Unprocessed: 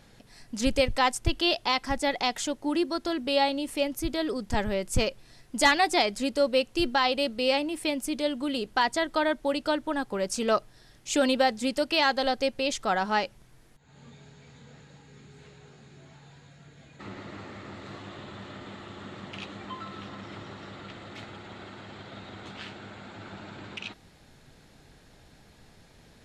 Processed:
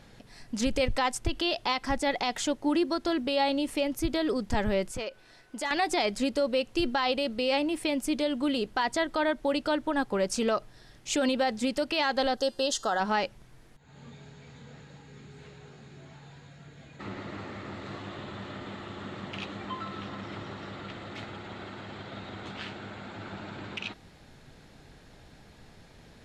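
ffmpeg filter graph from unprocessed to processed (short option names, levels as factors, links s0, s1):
-filter_complex "[0:a]asettb=1/sr,asplit=3[s0][s1][s2];[s0]atrim=end=4.914[s3];[s1]atrim=start=4.91:end=5.71,asetpts=PTS-STARTPTS,afade=t=in:d=0.004:c=qsin,afade=t=out:st=0.796:d=0.004:c=qsin,bass=f=250:g=-12,treble=f=4000:g=-4,acompressor=threshold=0.0141:ratio=2.5:attack=3.2:release=140:knee=1:detection=peak,aeval=exprs='val(0)+0.000501*sin(2*PI*1500*n/s)':c=same[s4];[s2]atrim=start=5.706[s5];[s3][s4]acrossfade=d=0.004:c1=hsin:c2=qsin[s6];[s6][s5]acrossfade=d=0.004:c1=qsin:c2=hsin,asettb=1/sr,asplit=3[s7][s8][s9];[s7]atrim=end=12.374[s10];[s8]atrim=start=12.37:end=13,asetpts=PTS-STARTPTS,afade=t=in:d=0.004:c=qsin,afade=t=out:st=0.626:d=0.004:c=qsin,asuperstop=centerf=2300:order=4:qfactor=2.3,bass=f=250:g=-9,treble=f=4000:g=5,bandreject=f=349.5:t=h:w=4,bandreject=f=699:t=h:w=4,bandreject=f=1048.5:t=h:w=4,bandreject=f=1398:t=h:w=4,bandreject=f=1747.5:t=h:w=4,bandreject=f=2097:t=h:w=4,bandreject=f=2446.5:t=h:w=4,bandreject=f=2796:t=h:w=4,bandreject=f=3145.5:t=h:w=4,bandreject=f=3495:t=h:w=4,bandreject=f=3844.5:t=h:w=4,bandreject=f=4194:t=h:w=4,bandreject=f=4543.5:t=h:w=4,bandreject=f=4893:t=h:w=4,bandreject=f=5242.5:t=h:w=4,bandreject=f=5592:t=h:w=4,bandreject=f=5941.5:t=h:w=4,bandreject=f=6291:t=h:w=4,bandreject=f=6640.5:t=h:w=4,bandreject=f=6990:t=h:w=4,bandreject=f=7339.5:t=h:w=4,bandreject=f=7689:t=h:w=4,bandreject=f=8038.5:t=h:w=4,bandreject=f=8388:t=h:w=4,bandreject=f=8737.5:t=h:w=4,bandreject=f=9087:t=h:w=4,bandreject=f=9436.5:t=h:w=4,bandreject=f=9786:t=h:w=4,bandreject=f=10135.5:t=h:w=4,bandreject=f=10485:t=h:w=4,bandreject=f=10834.5:t=h:w=4[s11];[s9]atrim=start=12.996[s12];[s10][s11]acrossfade=d=0.004:c1=hsin:c2=qsin[s13];[s13][s12]acrossfade=d=0.004:c1=qsin:c2=hsin,highshelf=f=6500:g=-6.5,alimiter=limit=0.1:level=0:latency=1:release=68,volume=1.33"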